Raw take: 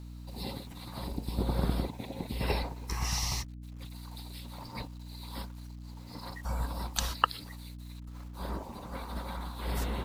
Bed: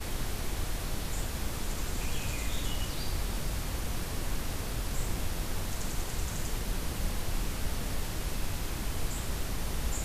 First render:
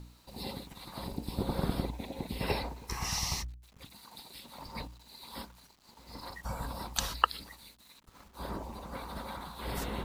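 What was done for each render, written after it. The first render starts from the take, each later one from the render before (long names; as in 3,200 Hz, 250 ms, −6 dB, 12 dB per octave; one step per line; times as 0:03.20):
hum removal 60 Hz, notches 5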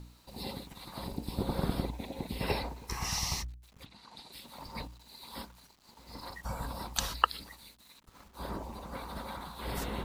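0:03.84–0:04.31: low-pass filter 3,800 Hz → 8,100 Hz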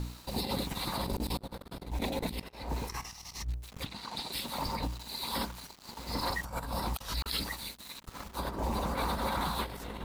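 compressor whose output falls as the input rises −42 dBFS, ratio −0.5
leveller curve on the samples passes 2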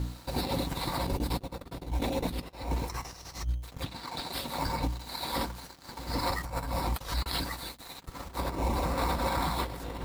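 in parallel at −3 dB: decimation without filtering 14×
on the sum: notch comb filter 210 Hz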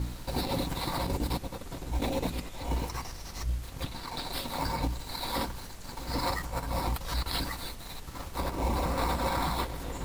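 mix in bed −11.5 dB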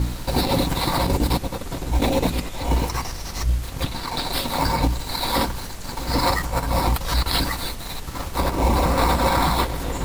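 level +10.5 dB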